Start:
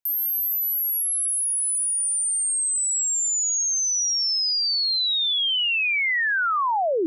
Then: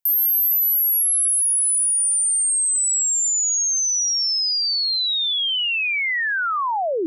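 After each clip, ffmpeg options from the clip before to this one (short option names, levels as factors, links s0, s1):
-af "highshelf=f=8500:g=8"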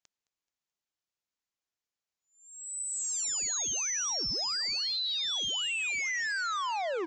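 -af "aresample=16000,asoftclip=type=hard:threshold=0.0316,aresample=44100,aecho=1:1:215|430|645:0.0794|0.0365|0.0168,volume=0.841"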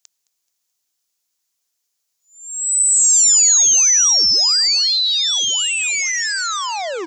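-af "bass=f=250:g=-5,treble=f=4000:g=14,volume=2.51"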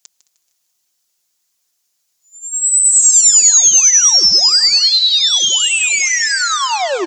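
-filter_complex "[0:a]aecho=1:1:5.6:0.53,asplit=2[s0][s1];[s1]alimiter=limit=0.2:level=0:latency=1:release=144,volume=1.12[s2];[s0][s2]amix=inputs=2:normalize=0,aecho=1:1:153|306|459|612:0.188|0.081|0.0348|0.015,volume=0.891"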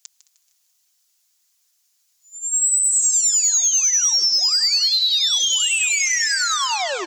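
-af "acompressor=threshold=0.141:ratio=6,highpass=f=1200:p=1,acontrast=70,volume=0.562"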